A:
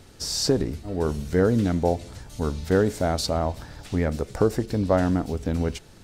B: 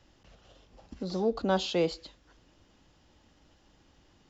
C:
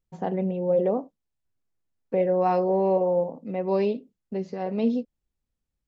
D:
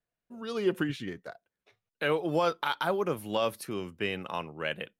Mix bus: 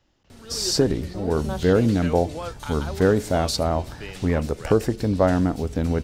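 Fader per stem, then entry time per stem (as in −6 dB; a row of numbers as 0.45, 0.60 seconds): +2.0 dB, −4.5 dB, muted, −6.5 dB; 0.30 s, 0.00 s, muted, 0.00 s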